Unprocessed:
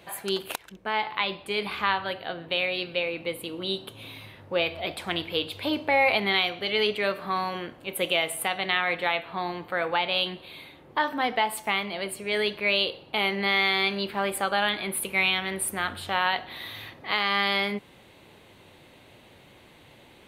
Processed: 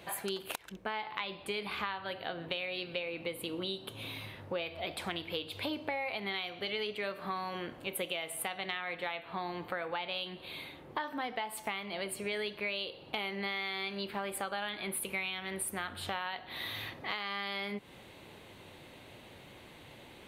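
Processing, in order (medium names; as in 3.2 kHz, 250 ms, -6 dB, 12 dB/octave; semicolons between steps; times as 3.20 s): compression 6:1, threshold -34 dBFS, peak gain reduction 16 dB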